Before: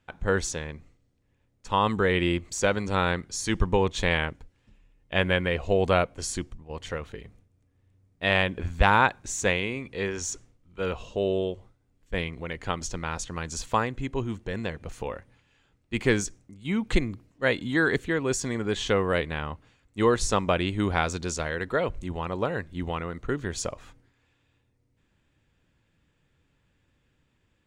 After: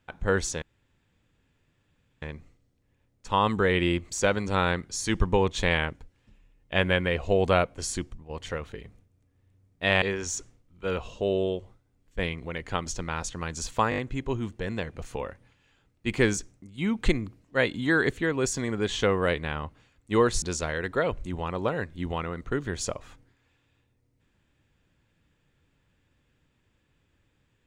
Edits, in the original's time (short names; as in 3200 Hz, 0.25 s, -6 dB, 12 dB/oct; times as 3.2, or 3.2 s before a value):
0.62 insert room tone 1.60 s
8.42–9.97 cut
13.85 stutter 0.02 s, 5 plays
20.29–21.19 cut